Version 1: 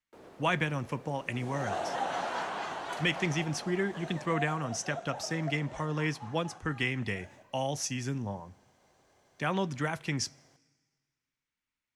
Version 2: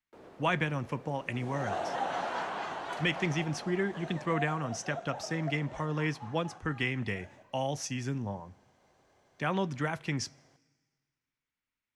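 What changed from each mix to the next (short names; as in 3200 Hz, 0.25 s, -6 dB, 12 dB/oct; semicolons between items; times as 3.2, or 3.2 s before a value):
master: add high shelf 5600 Hz -7.5 dB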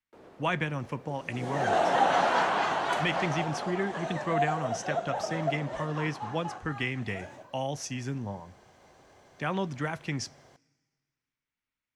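second sound +9.5 dB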